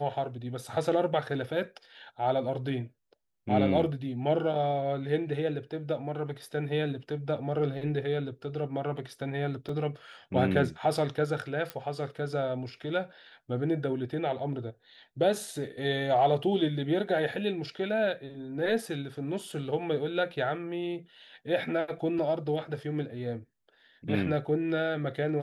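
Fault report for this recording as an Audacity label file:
9.690000	9.690000	dropout 3.1 ms
11.700000	11.700000	pop -19 dBFS

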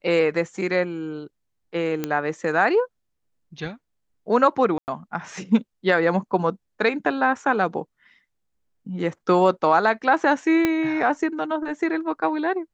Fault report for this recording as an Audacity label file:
2.040000	2.040000	pop -11 dBFS
4.780000	4.880000	dropout 99 ms
10.650000	10.650000	pop -7 dBFS

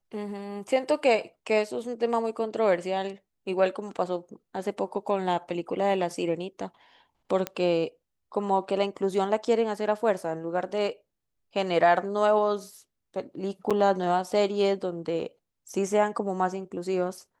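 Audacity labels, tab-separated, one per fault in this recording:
7.470000	7.470000	pop -14 dBFS
13.700000	13.710000	dropout 6.4 ms

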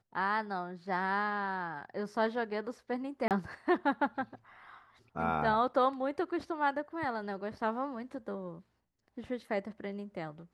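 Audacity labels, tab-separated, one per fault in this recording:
3.280000	3.310000	dropout 28 ms

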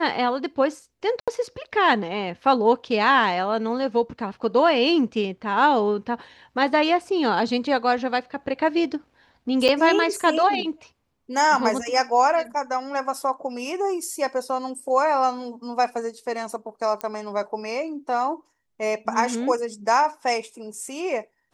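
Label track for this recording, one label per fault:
1.200000	1.280000	dropout 76 ms
9.680000	9.690000	dropout 6.9 ms
17.010000	17.010000	pop -14 dBFS

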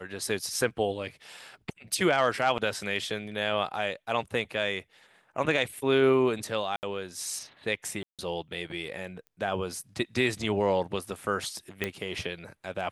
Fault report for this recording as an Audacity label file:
2.580000	2.590000	dropout 5.3 ms
6.760000	6.830000	dropout 69 ms
8.030000	8.190000	dropout 157 ms
9.270000	9.270000	pop -34 dBFS
11.840000	11.840000	pop -14 dBFS

